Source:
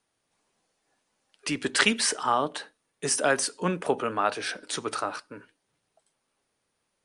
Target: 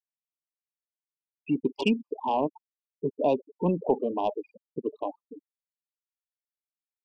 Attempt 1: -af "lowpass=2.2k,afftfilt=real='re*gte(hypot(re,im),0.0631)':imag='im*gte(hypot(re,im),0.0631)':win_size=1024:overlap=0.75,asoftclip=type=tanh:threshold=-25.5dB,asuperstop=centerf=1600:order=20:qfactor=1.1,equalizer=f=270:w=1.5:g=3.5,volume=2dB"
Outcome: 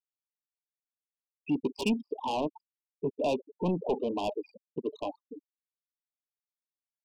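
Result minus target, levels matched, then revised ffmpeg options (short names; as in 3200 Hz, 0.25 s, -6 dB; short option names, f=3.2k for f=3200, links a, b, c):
soft clip: distortion +11 dB
-af "lowpass=2.2k,afftfilt=real='re*gte(hypot(re,im),0.0631)':imag='im*gte(hypot(re,im),0.0631)':win_size=1024:overlap=0.75,asoftclip=type=tanh:threshold=-14.5dB,asuperstop=centerf=1600:order=20:qfactor=1.1,equalizer=f=270:w=1.5:g=3.5,volume=2dB"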